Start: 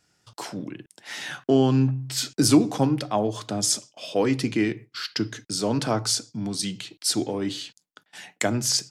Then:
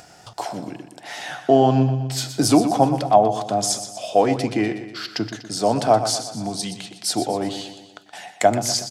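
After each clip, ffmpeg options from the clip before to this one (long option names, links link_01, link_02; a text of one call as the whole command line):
ffmpeg -i in.wav -filter_complex "[0:a]equalizer=frequency=710:width_type=o:width=0.63:gain=15,acompressor=mode=upward:threshold=-33dB:ratio=2.5,asplit=2[link_01][link_02];[link_02]aecho=0:1:122|244|366|488|610:0.282|0.144|0.0733|0.0374|0.0191[link_03];[link_01][link_03]amix=inputs=2:normalize=0" out.wav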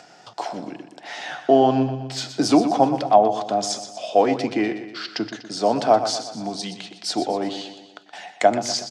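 ffmpeg -i in.wav -filter_complex "[0:a]acrossover=split=160 6800:gain=0.0891 1 0.0708[link_01][link_02][link_03];[link_01][link_02][link_03]amix=inputs=3:normalize=0" out.wav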